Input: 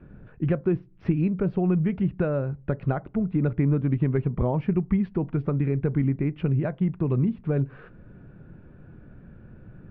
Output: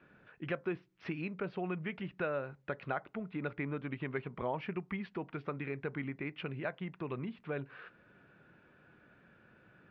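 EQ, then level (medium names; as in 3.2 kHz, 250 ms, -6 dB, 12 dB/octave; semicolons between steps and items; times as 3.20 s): distance through air 160 m; differentiator; +14.0 dB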